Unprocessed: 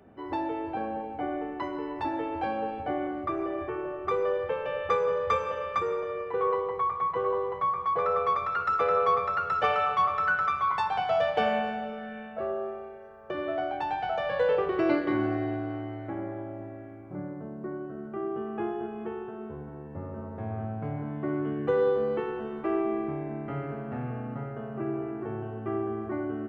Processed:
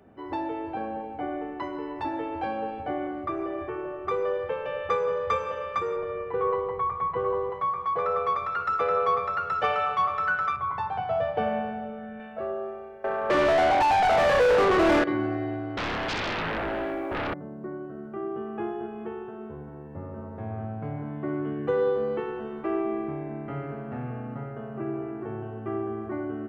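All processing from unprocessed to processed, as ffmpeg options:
-filter_complex "[0:a]asettb=1/sr,asplit=3[a][b][c];[a]atrim=end=5.964[d];[b]atrim=start=5.96:end=7.5,asetpts=PTS-STARTPTS,afade=t=in:d=0.004:c=qsin,afade=t=out:st=1.536:d=0.004:c=qsin,lowpass=3.6k,lowshelf=f=160:g=9.5[e];[c]atrim=start=7.496[f];[d][e]acrossfade=d=0.004:c1=hsin:c2=qsin[g];[g][f]acrossfade=d=0.004:c1=qsin:c2=hsin,asettb=1/sr,asplit=3[h][i][j];[h]atrim=end=10.564[k];[i]atrim=start=10.56:end=12.2,asetpts=PTS-STARTPTS,afade=t=in:d=0.004:c=qsin,afade=t=out:st=1.636:d=0.004:c=qsin,lowpass=f=1.1k:p=1,equalizer=f=100:w=1.2:g=8.5[l];[j]atrim=start=12.196[m];[k][l]acrossfade=d=0.004:c1=hsin:c2=qsin[n];[n][m]acrossfade=d=0.004:c1=qsin:c2=hsin,asettb=1/sr,asplit=3[o][p][q];[o]atrim=end=13.044[r];[p]atrim=start=13.04:end=15.04,asetpts=PTS-STARTPTS,afade=t=in:d=0.004:c=qsin,afade=t=out:st=1.996:d=0.004:c=qsin,acrossover=split=2900[s][t];[t]acompressor=threshold=-59dB:ratio=4:attack=1:release=60[u];[s][u]amix=inputs=2:normalize=0,asplit=2[v][w];[w]highpass=f=720:p=1,volume=33dB,asoftclip=type=tanh:threshold=-13.5dB[x];[v][x]amix=inputs=2:normalize=0,lowpass=f=1.7k:p=1,volume=-6dB[y];[q]atrim=start=15.036[z];[r][y]acrossfade=d=0.004:c1=hsin:c2=qsin[aa];[aa][z]acrossfade=d=0.004:c1=qsin:c2=hsin,asettb=1/sr,asplit=3[ab][ac][ad];[ab]atrim=end=15.774[ae];[ac]atrim=start=15.77:end=17.34,asetpts=PTS-STARTPTS,afade=t=in:d=0.004:c=qsin,afade=t=out:st=1.566:d=0.004:c=qsin,highpass=f=340:w=0.5412,highpass=f=340:w=1.3066,aeval=exprs='0.0473*sin(PI/2*7.08*val(0)/0.0473)':c=same[af];[ad]atrim=start=17.336[ag];[ae][af]acrossfade=d=0.004:c1=hsin:c2=qsin[ah];[ah][ag]acrossfade=d=0.004:c1=qsin:c2=hsin"

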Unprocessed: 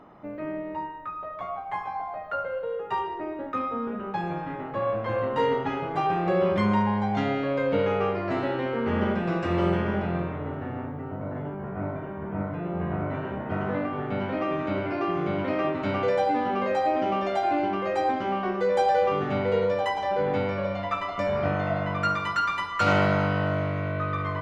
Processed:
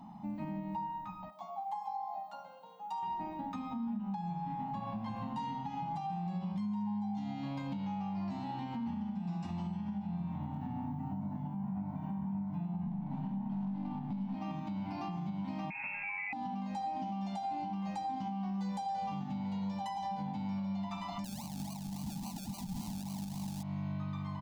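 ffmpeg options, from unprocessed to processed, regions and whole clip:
-filter_complex "[0:a]asettb=1/sr,asplit=3[a][b][c];[a]atrim=end=1.304[d];[b]atrim=start=1.3:end=3.03,asetpts=PTS-STARTPTS,afade=t=in:d=0.004:c=qsin,afade=t=out:st=1.726:d=0.004:c=qsin,highpass=500,equalizer=f=1.9k:w=0.93:g=-12.5[e];[c]atrim=start=3.026[f];[d][e]acrossfade=d=0.004:c1=hsin:c2=qsin[g];[g][f]acrossfade=d=0.004:c1=qsin:c2=hsin,asettb=1/sr,asplit=3[h][i][j];[h]atrim=end=12.864[k];[i]atrim=start=12.86:end=14.35,asetpts=PTS-STARTPTS,afade=t=in:d=0.004:c=qsin,afade=t=out:st=1.486:d=0.004:c=qsin,highpass=f=140:w=0.5412,highpass=f=140:w=1.3066,lowshelf=f=480:g=10,aeval=exprs='(tanh(11.2*val(0)+0.65)-tanh(0.65))/11.2':c=same[l];[j]atrim=start=14.346[m];[k][l]acrossfade=d=0.004:c1=hsin:c2=qsin[n];[n][m]acrossfade=d=0.004:c1=qsin:c2=hsin,asettb=1/sr,asplit=3[o][p][q];[o]atrim=end=15.704[r];[p]atrim=start=15.7:end=16.33,asetpts=PTS-STARTPTS,afade=t=in:d=0.004:c=qsin,afade=t=out:st=0.626:d=0.004:c=qsin,acompressor=threshold=-26dB:ratio=2.5:attack=3.2:release=140:knee=1:detection=peak,lowpass=f=2.4k:t=q:w=0.5098,lowpass=f=2.4k:t=q:w=0.6013,lowpass=f=2.4k:t=q:w=0.9,lowpass=f=2.4k:t=q:w=2.563,afreqshift=-2800[s];[q]atrim=start=16.326[t];[r][s]acrossfade=d=0.004:c1=hsin:c2=qsin[u];[u][t]acrossfade=d=0.004:c1=qsin:c2=hsin,asettb=1/sr,asplit=3[v][w][x];[v]atrim=end=21.244[y];[w]atrim=start=21.24:end=23.63,asetpts=PTS-STARTPTS,afade=t=in:d=0.004:c=qsin,afade=t=out:st=2.386:d=0.004:c=qsin,highpass=60,acrusher=samples=35:mix=1:aa=0.000001:lfo=1:lforange=21:lforate=3.6[z];[x]atrim=start=23.626[aa];[y][z]acrossfade=d=0.004:c1=hsin:c2=qsin[ab];[ab][aa]acrossfade=d=0.004:c1=qsin:c2=hsin,firequalizer=gain_entry='entry(110,0);entry(200,15);entry(430,-29);entry(830,9);entry(1300,-14);entry(2600,-3);entry(4200,6);entry(6300,8)':delay=0.05:min_phase=1,acompressor=threshold=-30dB:ratio=6,alimiter=level_in=3.5dB:limit=-24dB:level=0:latency=1:release=158,volume=-3.5dB,volume=-3dB"

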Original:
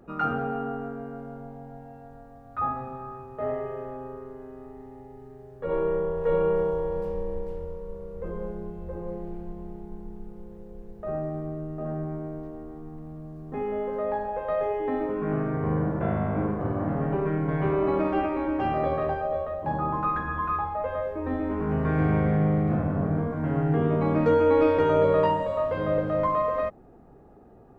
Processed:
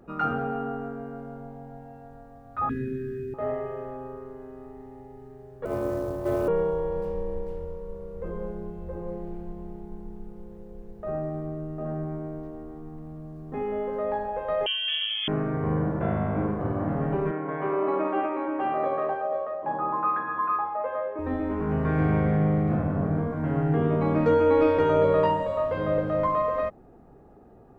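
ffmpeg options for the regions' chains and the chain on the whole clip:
-filter_complex "[0:a]asettb=1/sr,asplit=3[a][b][c];[a]atrim=end=2.694[d];[b]atrim=start=2.69:end=3.34,asetpts=PTS-STARTPTS,afade=t=in:d=0.004:c=qsin,afade=t=out:st=0.646:d=0.004:c=qsin,equalizer=f=480:w=0.44:g=6.5,acontrast=33,asuperstop=centerf=830:order=20:qfactor=0.78[e];[c]atrim=start=3.336[f];[d][e]acrossfade=d=0.004:c1=hsin:c2=qsin[g];[g][f]acrossfade=d=0.004:c1=qsin:c2=hsin,asettb=1/sr,asplit=3[h][i][j];[h]atrim=end=5.654[k];[i]atrim=start=5.65:end=6.48,asetpts=PTS-STARTPTS,afade=t=in:d=0.004:c=qsin,afade=t=out:st=0.826:d=0.004:c=qsin,acrusher=bits=7:mode=log:mix=0:aa=0.000001,aeval=exprs='val(0)*sin(2*PI*110*n/s)':c=same[l];[j]atrim=start=6.476[m];[k][l]acrossfade=d=0.004:c1=hsin:c2=qsin[n];[n][m]acrossfade=d=0.004:c1=qsin:c2=hsin,asettb=1/sr,asplit=3[o][p][q];[o]atrim=end=14.664[r];[p]atrim=start=14.66:end=15.28,asetpts=PTS-STARTPTS,afade=t=in:d=0.004:c=qsin,afade=t=out:st=0.616:d=0.004:c=qsin,highpass=f=210:p=1,lowpass=f=3.1k:t=q:w=0.5098,lowpass=f=3.1k:t=q:w=0.6013,lowpass=f=3.1k:t=q:w=0.9,lowpass=f=3.1k:t=q:w=2.563,afreqshift=-3600,equalizer=f=720:w=1.6:g=8[s];[q]atrim=start=15.276[t];[r][s]acrossfade=d=0.004:c1=hsin:c2=qsin[u];[u][t]acrossfade=d=0.004:c1=qsin:c2=hsin,asettb=1/sr,asplit=3[v][w][x];[v]atrim=end=17.314[y];[w]atrim=start=17.31:end=21.19,asetpts=PTS-STARTPTS,afade=t=in:d=0.004:c=qsin,afade=t=out:st=3.876:d=0.004:c=qsin,highpass=310,lowpass=2.4k,equalizer=f=1.1k:w=4:g=3.5[z];[x]atrim=start=21.186[aa];[y][z]acrossfade=d=0.004:c1=hsin:c2=qsin[ab];[ab][aa]acrossfade=d=0.004:c1=qsin:c2=hsin"

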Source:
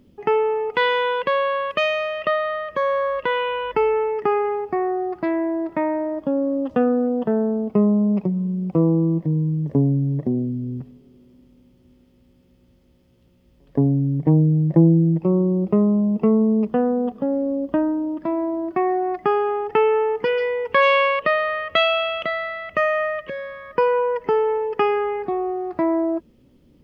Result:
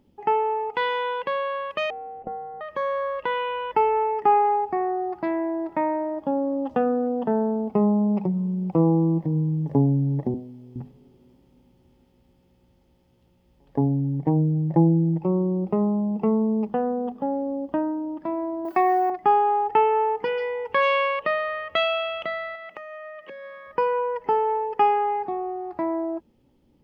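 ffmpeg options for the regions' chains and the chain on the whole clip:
-filter_complex "[0:a]asettb=1/sr,asplit=3[a][b][c];[a]atrim=end=1.904[d];[b]atrim=start=1.9:end=2.61,asetpts=PTS-STARTPTS,afade=t=in:d=0.004:c=qsin,afade=t=out:st=0.706:d=0.004:c=qsin,aeval=exprs='val(0)+0.5*0.0178*sgn(val(0))':c=same,lowpass=f=360:t=q:w=4.5,aeval=exprs='val(0)*sin(2*PI*150*n/s)':c=same[e];[c]atrim=start=2.606[f];[d][e]acrossfade=d=0.004:c1=hsin:c2=qsin[g];[g][f]acrossfade=d=0.004:c1=qsin:c2=hsin,asettb=1/sr,asplit=3[h][i][j];[h]atrim=end=10.344[k];[i]atrim=start=10.34:end=10.76,asetpts=PTS-STARTPTS,afade=t=in:d=0.004:c=qsin,afade=t=out:st=0.416:d=0.004:c=qsin,highpass=f=900:p=1,asplit=2[l][m];[m]adelay=31,volume=-14dB[n];[l][n]amix=inputs=2:normalize=0,atrim=end_sample=18522[o];[j]atrim=start=10.756[p];[k][o]acrossfade=d=0.004:c1=hsin:c2=qsin[q];[q][p]acrossfade=d=0.004:c1=qsin:c2=hsin,asettb=1/sr,asplit=3[r][s][t];[r]atrim=end=18.654[u];[s]atrim=start=18.65:end=19.1,asetpts=PTS-STARTPTS,afade=t=in:d=0.004:c=qsin,afade=t=out:st=0.446:d=0.004:c=qsin,aemphasis=mode=production:type=riaa,acontrast=67[v];[t]atrim=start=19.096[w];[u][v]acrossfade=d=0.004:c1=hsin:c2=qsin[x];[x][w]acrossfade=d=0.004:c1=qsin:c2=hsin,asettb=1/sr,asplit=3[y][z][aa];[y]atrim=end=22.554[ab];[z]atrim=start=22.55:end=23.67,asetpts=PTS-STARTPTS,afade=t=in:d=0.004:c=qsin,afade=t=out:st=1.116:d=0.004:c=qsin,highpass=f=180:w=0.5412,highpass=f=180:w=1.3066,acompressor=threshold=-30dB:ratio=10:attack=3.2:release=140:knee=1:detection=peak[ac];[aa]atrim=start=23.666[ad];[ab][ac]acrossfade=d=0.004:c1=hsin:c2=qsin[ae];[ae][ad]acrossfade=d=0.004:c1=qsin:c2=hsin,equalizer=f=840:w=6:g=13.5,bandreject=f=50:t=h:w=6,bandreject=f=100:t=h:w=6,bandreject=f=150:t=h:w=6,bandreject=f=200:t=h:w=6,bandreject=f=250:t=h:w=6,dynaudnorm=f=760:g=9:m=11.5dB,volume=-7dB"

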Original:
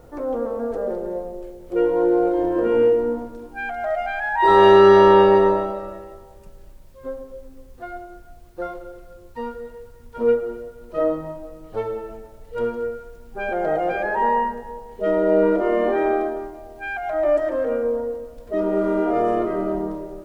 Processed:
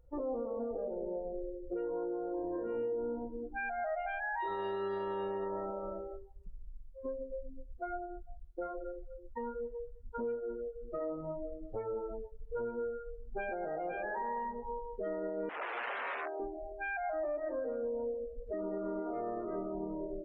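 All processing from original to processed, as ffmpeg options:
-filter_complex "[0:a]asettb=1/sr,asplit=3[a][b][c];[a]atrim=end=15.494[d];[b]atrim=start=15.49:end=16.4,asetpts=PTS-STARTPTS,afade=t=in:d=0.004:c=qsin,afade=t=out:st=0.906:d=0.004:c=qsin,aeval=exprs='(mod(7.5*val(0)+1,2)-1)/7.5':c=same,highpass=540,lowpass=2.4k[e];[c]atrim=start=16.396[f];[d][e]acrossfade=d=0.004:c1=hsin:c2=qsin[g];[g][f]acrossfade=d=0.004:c1=qsin:c2=hsin,afftdn=nr=31:nf=-31,acompressor=threshold=-35dB:ratio=2.5,alimiter=level_in=4dB:limit=-24dB:level=0:latency=1:release=168,volume=-4dB,volume=-1.5dB"

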